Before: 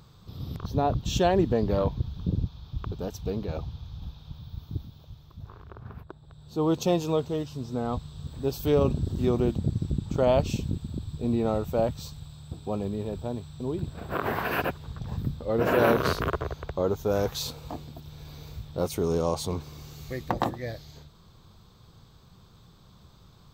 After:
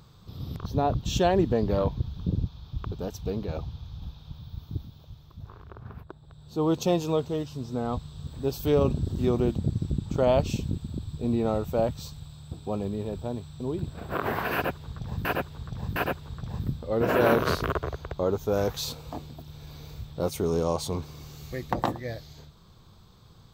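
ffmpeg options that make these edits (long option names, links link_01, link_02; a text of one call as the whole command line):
ffmpeg -i in.wav -filter_complex "[0:a]asplit=3[link_01][link_02][link_03];[link_01]atrim=end=15.252[link_04];[link_02]atrim=start=14.538:end=15.252[link_05];[link_03]atrim=start=14.538[link_06];[link_04][link_05]acrossfade=duration=0.004:curve1=hsin:curve2=hsin[link_07];[link_07][link_06]acrossfade=duration=0.004:curve1=hsin:curve2=hsin" out.wav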